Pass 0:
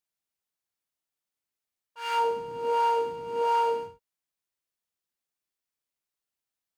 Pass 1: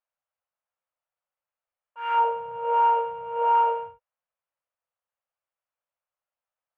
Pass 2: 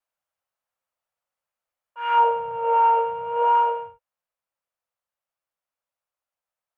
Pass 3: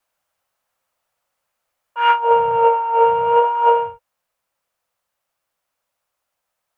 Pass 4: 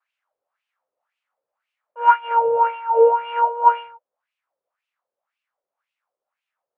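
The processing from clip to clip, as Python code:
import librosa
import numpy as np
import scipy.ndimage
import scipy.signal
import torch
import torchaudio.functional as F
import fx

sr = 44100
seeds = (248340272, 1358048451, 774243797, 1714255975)

y1 = fx.curve_eq(x, sr, hz=(130.0, 200.0, 330.0, 510.0, 800.0, 1300.0, 1900.0, 2900.0, 4700.0, 11000.0), db=(0, -10, -30, 11, 9, 9, 2, 0, -23, -19))
y1 = F.gain(torch.from_numpy(y1), -4.0).numpy()
y2 = fx.rider(y1, sr, range_db=10, speed_s=0.5)
y2 = fx.vibrato(y2, sr, rate_hz=0.63, depth_cents=20.0)
y2 = F.gain(torch.from_numpy(y2), 3.5).numpy()
y3 = fx.over_compress(y2, sr, threshold_db=-22.0, ratio=-0.5)
y3 = F.gain(torch.from_numpy(y3), 9.0).numpy()
y4 = fx.wah_lfo(y3, sr, hz=1.9, low_hz=430.0, high_hz=2800.0, q=3.7)
y4 = F.gain(torch.from_numpy(y4), 5.0).numpy()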